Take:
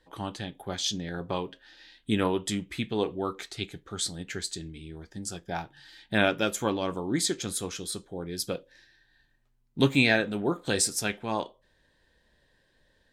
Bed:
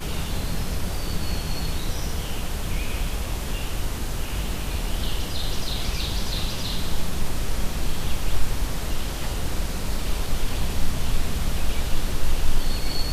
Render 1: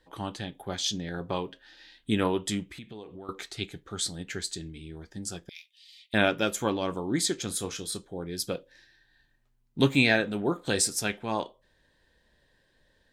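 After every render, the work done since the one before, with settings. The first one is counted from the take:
0:02.63–0:03.29: downward compressor 5 to 1, threshold −41 dBFS
0:05.49–0:06.14: Butterworth high-pass 2,100 Hz 96 dB per octave
0:07.47–0:07.98: double-tracking delay 30 ms −12 dB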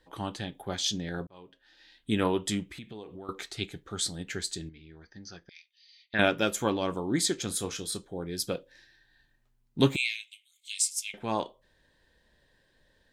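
0:01.27–0:02.30: fade in
0:04.69–0:06.19: Chebyshev low-pass with heavy ripple 6,300 Hz, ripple 9 dB
0:09.96–0:11.14: Chebyshev high-pass with heavy ripple 2,100 Hz, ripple 6 dB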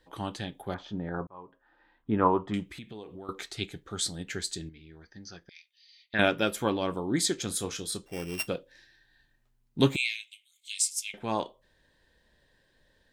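0:00.74–0:02.54: low-pass with resonance 1,100 Hz, resonance Q 3.4
0:06.38–0:07.17: parametric band 6,700 Hz −11 dB 0.31 octaves
0:08.06–0:08.48: samples sorted by size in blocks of 16 samples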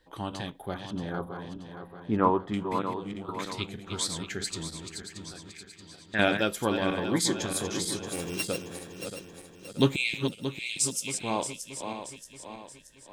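feedback delay that plays each chunk backwards 314 ms, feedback 67%, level −7 dB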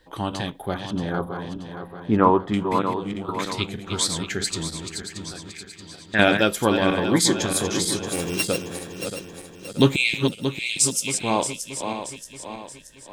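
level +7.5 dB
brickwall limiter −3 dBFS, peak gain reduction 2 dB

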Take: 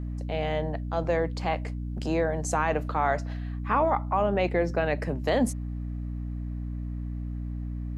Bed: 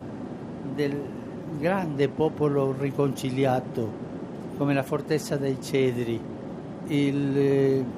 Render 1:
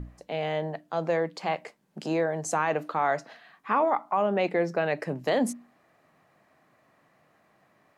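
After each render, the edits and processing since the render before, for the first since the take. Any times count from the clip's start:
mains-hum notches 60/120/180/240/300 Hz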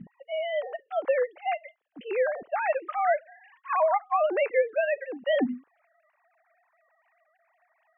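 three sine waves on the formant tracks
low-pass with resonance 3,000 Hz, resonance Q 1.6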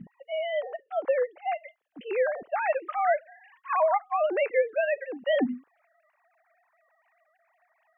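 0:00.61–0:01.56: high-shelf EQ 2,600 Hz −9.5 dB
0:04.02–0:04.80: parametric band 1,000 Hz −4.5 dB 0.64 octaves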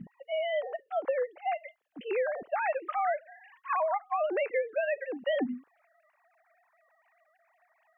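downward compressor, threshold −26 dBFS, peak gain reduction 7.5 dB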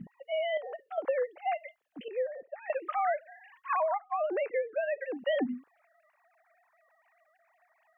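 0:00.57–0:00.98: downward compressor, threshold −36 dBFS
0:02.08–0:02.70: formant resonators in series e
0:03.93–0:05.01: high-frequency loss of the air 420 metres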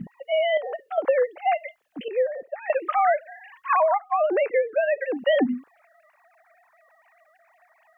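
level +9 dB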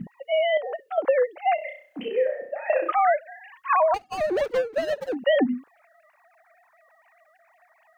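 0:01.55–0:02.92: flutter between parallel walls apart 5.6 metres, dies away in 0.46 s
0:03.94–0:05.15: running median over 41 samples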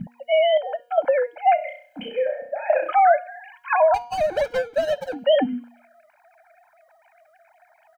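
comb filter 1.3 ms, depth 95%
hum removal 239.2 Hz, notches 28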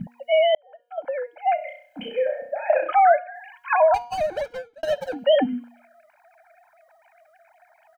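0:00.55–0:02.11: fade in linear
0:02.71–0:03.34: low-pass filter 5,500 Hz → 3,300 Hz 24 dB per octave
0:04.05–0:04.83: fade out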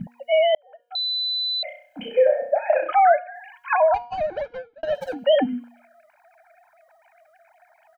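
0:00.95–0:01.63: beep over 4,000 Hz −22 dBFS
0:02.17–0:02.59: parametric band 690 Hz +8.5 dB 1.5 octaves
0:03.77–0:04.95: high-frequency loss of the air 250 metres

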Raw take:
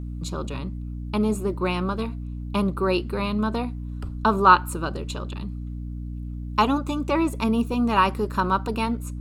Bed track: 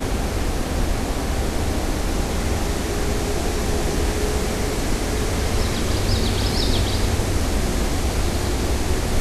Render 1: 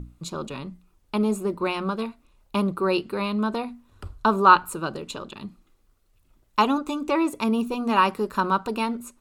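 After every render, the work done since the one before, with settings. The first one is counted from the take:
mains-hum notches 60/120/180/240/300 Hz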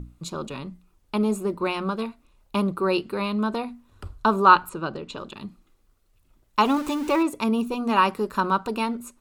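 0:04.69–0:05.18: high-frequency loss of the air 100 metres
0:06.65–0:07.23: converter with a step at zero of −31.5 dBFS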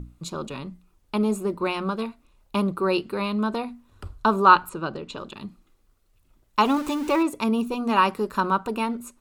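0:08.50–0:08.90: parametric band 4,600 Hz −5.5 dB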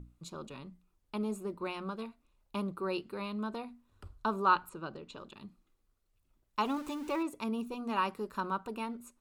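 level −12 dB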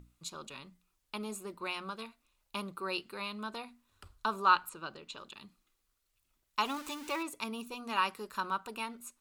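tilt shelving filter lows −7.5 dB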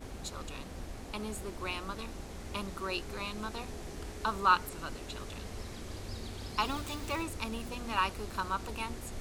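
mix in bed track −21.5 dB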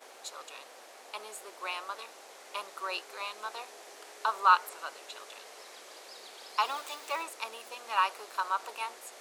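high-pass filter 500 Hz 24 dB per octave
dynamic equaliser 960 Hz, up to +4 dB, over −43 dBFS, Q 0.87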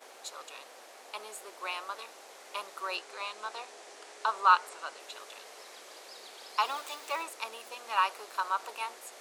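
0:02.96–0:05.00: low-pass filter 10,000 Hz 24 dB per octave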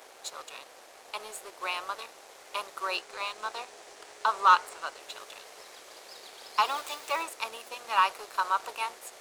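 leveller curve on the samples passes 1
upward compression, threshold −51 dBFS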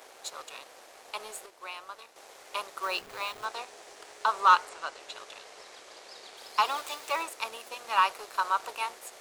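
0:01.46–0:02.16: clip gain −8 dB
0:02.83–0:03.45: hold until the input has moved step −44 dBFS
0:04.65–0:06.37: low-pass filter 8,300 Hz

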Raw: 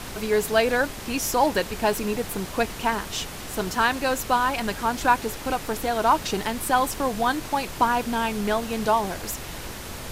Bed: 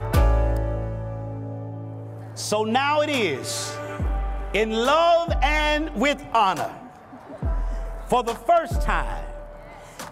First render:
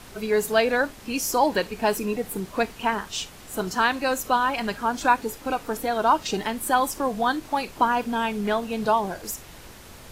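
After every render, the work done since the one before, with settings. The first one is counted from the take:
noise reduction from a noise print 9 dB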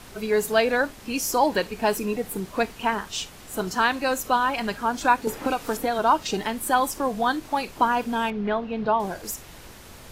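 0:05.27–0:05.99: multiband upward and downward compressor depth 100%
0:08.30–0:09.00: high-frequency loss of the air 280 metres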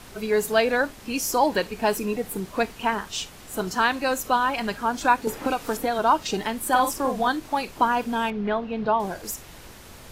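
0:06.68–0:07.28: double-tracking delay 46 ms −6 dB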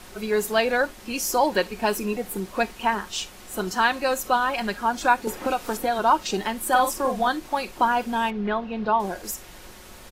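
parametric band 150 Hz −13.5 dB 0.29 octaves
comb filter 5.5 ms, depth 36%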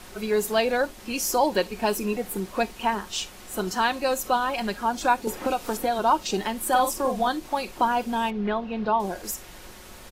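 dynamic equaliser 1,600 Hz, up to −5 dB, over −34 dBFS, Q 1.2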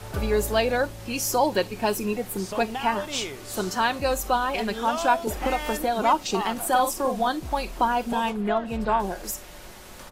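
mix in bed −11.5 dB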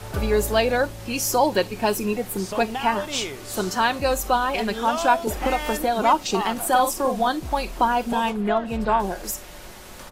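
level +2.5 dB

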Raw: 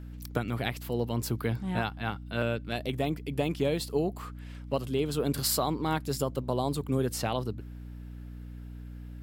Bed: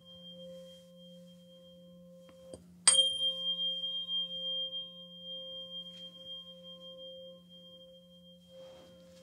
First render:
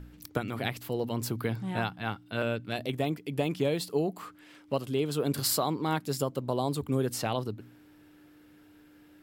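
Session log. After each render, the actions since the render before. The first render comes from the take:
hum removal 60 Hz, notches 4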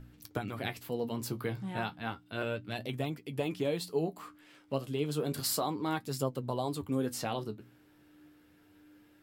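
flanger 0.32 Hz, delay 7.6 ms, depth 7.8 ms, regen +46%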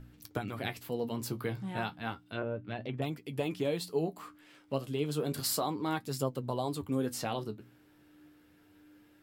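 0:02.26–0:03.02: treble cut that deepens with the level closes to 900 Hz, closed at −30.5 dBFS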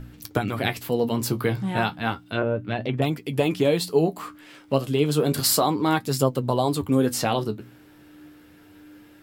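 level +11.5 dB

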